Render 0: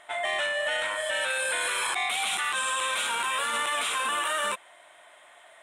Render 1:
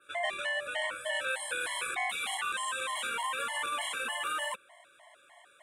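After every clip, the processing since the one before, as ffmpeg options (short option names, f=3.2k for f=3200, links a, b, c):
-af "adynamicequalizer=threshold=0.00355:dfrequency=5700:dqfactor=1.2:tfrequency=5700:tqfactor=1.2:attack=5:release=100:ratio=0.375:range=3:mode=cutabove:tftype=bell,afftfilt=real='re*gt(sin(2*PI*3.3*pts/sr)*(1-2*mod(floor(b*sr/1024/560),2)),0)':imag='im*gt(sin(2*PI*3.3*pts/sr)*(1-2*mod(floor(b*sr/1024/560),2)),0)':win_size=1024:overlap=0.75,volume=-2dB"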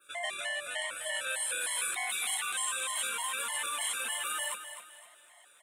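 -filter_complex "[0:a]asplit=2[a][b];[b]aecho=0:1:256|512|768|1024:0.316|0.114|0.041|0.0148[c];[a][c]amix=inputs=2:normalize=0,crystalizer=i=3.5:c=0,volume=-6dB"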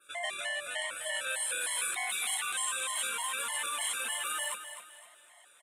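-af "aresample=32000,aresample=44100"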